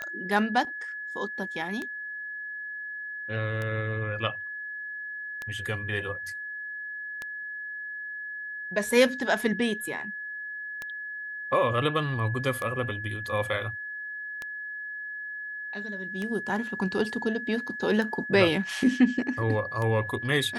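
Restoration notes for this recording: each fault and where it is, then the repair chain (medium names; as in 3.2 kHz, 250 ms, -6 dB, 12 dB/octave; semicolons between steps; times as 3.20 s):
tick 33 1/3 rpm -19 dBFS
whine 1.7 kHz -34 dBFS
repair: de-click; band-stop 1.7 kHz, Q 30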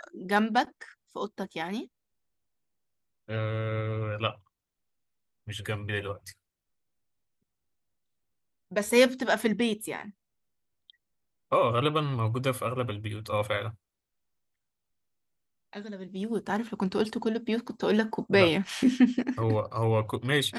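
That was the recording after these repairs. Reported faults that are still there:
nothing left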